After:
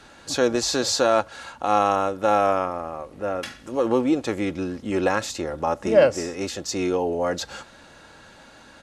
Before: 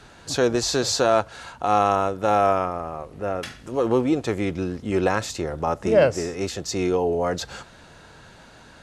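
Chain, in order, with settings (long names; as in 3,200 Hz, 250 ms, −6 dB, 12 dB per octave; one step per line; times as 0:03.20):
low-shelf EQ 120 Hz −7.5 dB
comb filter 3.6 ms, depth 32%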